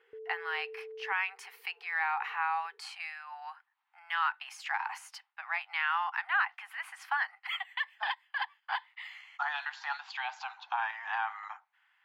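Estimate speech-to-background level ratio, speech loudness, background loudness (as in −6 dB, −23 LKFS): 12.0 dB, −34.5 LKFS, −46.5 LKFS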